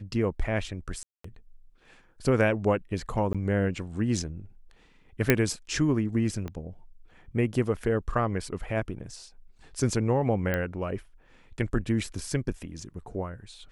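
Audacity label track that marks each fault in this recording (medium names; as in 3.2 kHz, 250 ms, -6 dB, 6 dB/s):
1.030000	1.240000	dropout 214 ms
3.330000	3.350000	dropout 16 ms
5.300000	5.300000	pop -5 dBFS
6.480000	6.480000	pop -23 dBFS
10.540000	10.540000	pop -15 dBFS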